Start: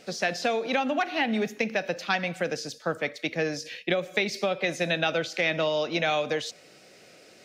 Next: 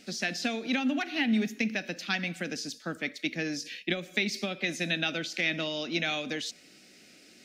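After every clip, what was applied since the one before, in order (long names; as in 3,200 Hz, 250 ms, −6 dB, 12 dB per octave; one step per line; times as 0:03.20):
graphic EQ with 10 bands 125 Hz −9 dB, 250 Hz +8 dB, 500 Hz −11 dB, 1,000 Hz −10 dB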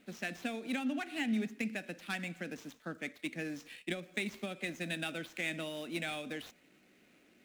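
running median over 9 samples
level −6.5 dB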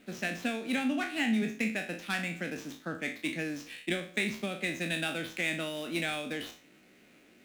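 peak hold with a decay on every bin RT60 0.39 s
level +4 dB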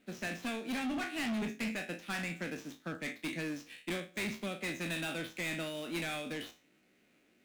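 hard clipping −32.5 dBFS, distortion −8 dB
expander for the loud parts 1.5 to 1, over −52 dBFS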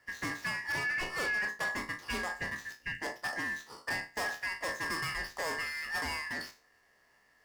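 band-splitting scrambler in four parts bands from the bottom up 2143
level +2 dB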